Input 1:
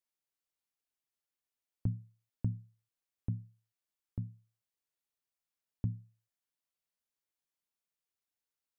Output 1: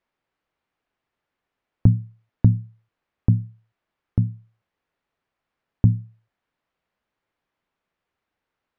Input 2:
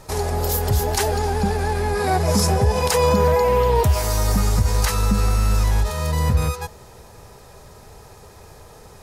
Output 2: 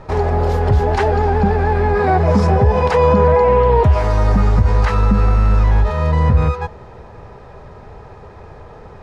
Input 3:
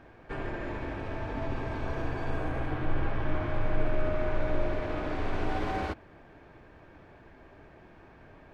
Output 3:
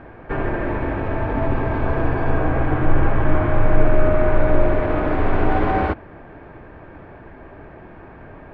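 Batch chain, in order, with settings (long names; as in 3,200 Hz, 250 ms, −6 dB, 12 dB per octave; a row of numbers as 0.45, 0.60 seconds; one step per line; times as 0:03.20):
low-pass filter 2,000 Hz 12 dB per octave
in parallel at −1.5 dB: brickwall limiter −14.5 dBFS
on the sum: normalise the peak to −2 dBFS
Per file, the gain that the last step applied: +13.0, +1.5, +7.5 decibels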